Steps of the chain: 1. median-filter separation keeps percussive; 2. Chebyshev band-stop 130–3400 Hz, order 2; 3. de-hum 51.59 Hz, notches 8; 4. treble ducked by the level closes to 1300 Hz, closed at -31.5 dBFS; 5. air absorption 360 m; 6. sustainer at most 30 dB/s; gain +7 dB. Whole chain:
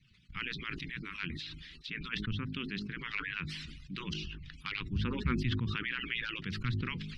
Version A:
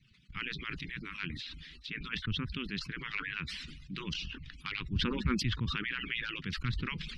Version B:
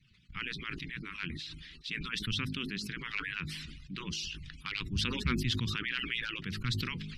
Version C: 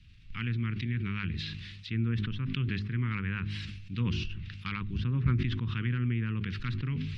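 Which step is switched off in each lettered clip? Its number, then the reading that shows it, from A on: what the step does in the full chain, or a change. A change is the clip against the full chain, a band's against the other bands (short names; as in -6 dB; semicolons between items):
3, 4 kHz band +2.5 dB; 4, 4 kHz band +5.0 dB; 1, 125 Hz band +9.0 dB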